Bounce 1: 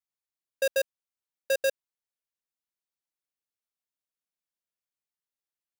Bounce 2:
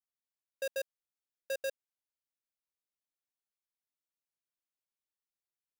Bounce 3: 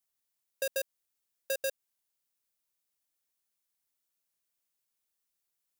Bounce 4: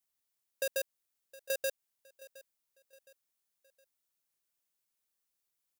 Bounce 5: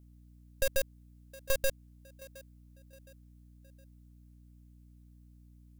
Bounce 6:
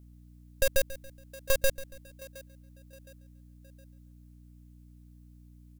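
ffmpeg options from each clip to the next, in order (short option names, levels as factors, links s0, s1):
-af "alimiter=level_in=1.26:limit=0.0631:level=0:latency=1,volume=0.794,volume=0.447"
-af "highshelf=f=5600:g=9,acompressor=threshold=0.0158:ratio=2,volume=1.68"
-af "aecho=1:1:715|1430|2145:0.1|0.041|0.0168,volume=0.891"
-af "aeval=exprs='0.106*(cos(1*acos(clip(val(0)/0.106,-1,1)))-cos(1*PI/2))+0.0335*(cos(6*acos(clip(val(0)/0.106,-1,1)))-cos(6*PI/2))':c=same,aeval=exprs='val(0)+0.00126*(sin(2*PI*60*n/s)+sin(2*PI*2*60*n/s)/2+sin(2*PI*3*60*n/s)/3+sin(2*PI*4*60*n/s)/4+sin(2*PI*5*60*n/s)/5)':c=same,volume=1.33"
-af "aecho=1:1:140|280|420:0.141|0.0551|0.0215,volume=1.58"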